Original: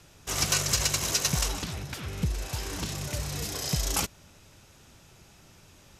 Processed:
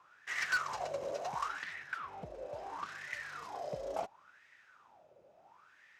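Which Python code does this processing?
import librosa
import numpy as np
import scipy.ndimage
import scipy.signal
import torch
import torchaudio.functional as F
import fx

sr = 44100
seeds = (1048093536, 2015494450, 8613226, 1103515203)

y = fx.wah_lfo(x, sr, hz=0.72, low_hz=540.0, high_hz=1900.0, q=9.7)
y = np.clip(y, -10.0 ** (-37.0 / 20.0), 10.0 ** (-37.0 / 20.0))
y = y * librosa.db_to_amplitude(10.5)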